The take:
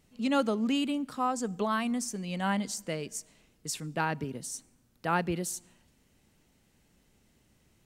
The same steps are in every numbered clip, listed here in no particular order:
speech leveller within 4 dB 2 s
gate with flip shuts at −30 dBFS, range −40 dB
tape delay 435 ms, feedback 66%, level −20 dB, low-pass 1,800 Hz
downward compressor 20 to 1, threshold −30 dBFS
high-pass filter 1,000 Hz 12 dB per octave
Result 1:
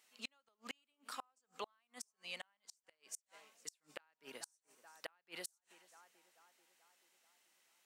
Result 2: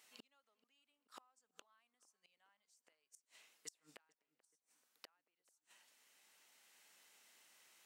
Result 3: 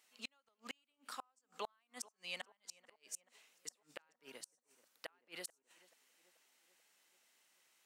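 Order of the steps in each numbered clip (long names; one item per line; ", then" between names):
high-pass filter, then downward compressor, then tape delay, then gate with flip, then speech leveller
downward compressor, then gate with flip, then speech leveller, then high-pass filter, then tape delay
high-pass filter, then downward compressor, then speech leveller, then gate with flip, then tape delay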